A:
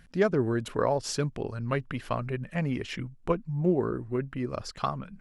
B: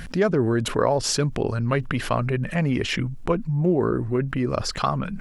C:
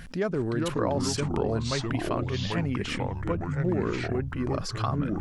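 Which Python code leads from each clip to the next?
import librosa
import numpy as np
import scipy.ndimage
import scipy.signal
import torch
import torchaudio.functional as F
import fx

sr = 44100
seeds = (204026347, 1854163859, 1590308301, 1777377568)

y1 = fx.env_flatten(x, sr, amount_pct=50)
y1 = y1 * 10.0 ** (2.5 / 20.0)
y2 = fx.echo_pitch(y1, sr, ms=346, semitones=-4, count=2, db_per_echo=-3.0)
y2 = y2 * 10.0 ** (-7.5 / 20.0)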